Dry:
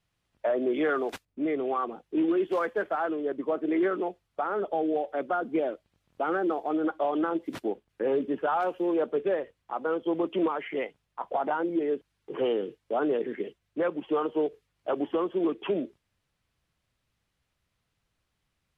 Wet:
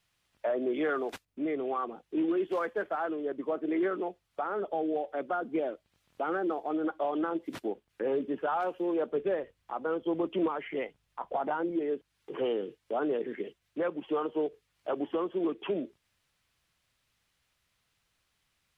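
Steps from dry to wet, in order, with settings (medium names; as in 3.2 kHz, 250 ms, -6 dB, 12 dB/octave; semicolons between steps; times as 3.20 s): 9.11–11.72 s: bass shelf 130 Hz +8 dB; tape noise reduction on one side only encoder only; trim -3.5 dB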